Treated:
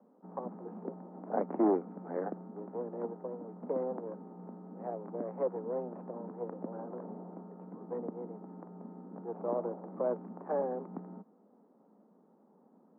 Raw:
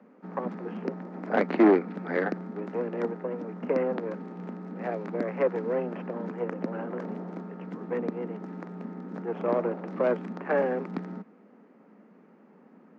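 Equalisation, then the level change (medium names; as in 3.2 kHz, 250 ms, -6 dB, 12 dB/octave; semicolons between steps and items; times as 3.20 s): four-pole ladder low-pass 1.1 kHz, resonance 35%; -2.0 dB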